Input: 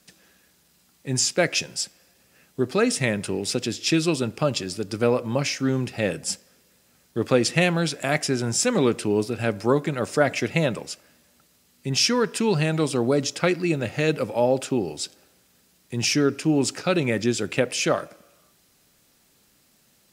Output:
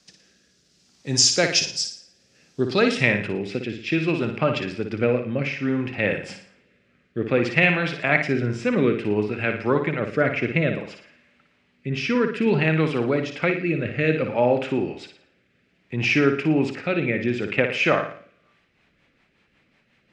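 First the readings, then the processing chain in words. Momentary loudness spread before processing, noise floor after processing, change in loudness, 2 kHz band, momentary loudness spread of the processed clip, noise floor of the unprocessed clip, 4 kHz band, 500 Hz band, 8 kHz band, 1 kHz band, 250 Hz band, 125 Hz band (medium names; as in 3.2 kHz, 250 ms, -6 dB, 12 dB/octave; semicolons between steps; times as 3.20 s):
9 LU, -65 dBFS, +1.5 dB, +5.0 dB, 10 LU, -62 dBFS, 0.0 dB, +0.5 dB, no reading, +0.5 dB, +0.5 dB, +0.5 dB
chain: low-pass sweep 5.6 kHz -> 2.3 kHz, 2.58–3.13 s; flutter echo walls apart 9.8 m, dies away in 0.49 s; rotary cabinet horn 0.6 Hz, later 5.5 Hz, at 18.07 s; trim +1 dB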